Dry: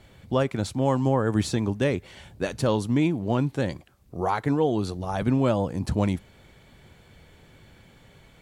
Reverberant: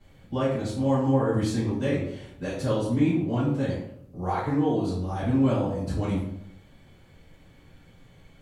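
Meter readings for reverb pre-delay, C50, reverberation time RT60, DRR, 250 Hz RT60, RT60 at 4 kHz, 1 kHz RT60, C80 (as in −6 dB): 3 ms, 2.5 dB, 0.70 s, −12.5 dB, 0.85 s, 0.45 s, 0.65 s, 6.0 dB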